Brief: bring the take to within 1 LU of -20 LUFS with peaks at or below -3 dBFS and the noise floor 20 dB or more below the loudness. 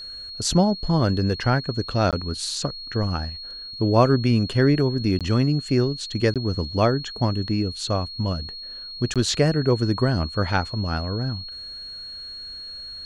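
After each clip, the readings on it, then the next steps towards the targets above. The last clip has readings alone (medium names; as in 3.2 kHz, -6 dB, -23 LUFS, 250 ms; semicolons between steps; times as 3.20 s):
dropouts 4; longest dropout 17 ms; steady tone 4.3 kHz; tone level -34 dBFS; loudness -23.0 LUFS; peak level -5.0 dBFS; loudness target -20.0 LUFS
-> interpolate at 2.11/5.19/6.34/9.14 s, 17 ms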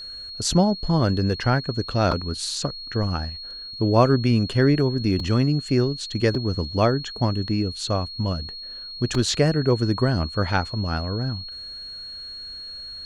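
dropouts 0; steady tone 4.3 kHz; tone level -34 dBFS
-> band-stop 4.3 kHz, Q 30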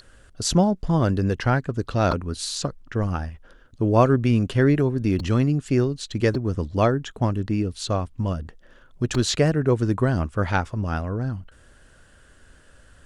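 steady tone not found; loudness -23.0 LUFS; peak level -5.0 dBFS; loudness target -20.0 LUFS
-> trim +3 dB; peak limiter -3 dBFS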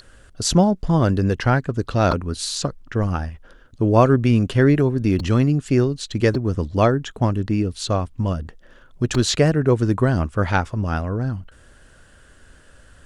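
loudness -20.0 LUFS; peak level -3.0 dBFS; noise floor -50 dBFS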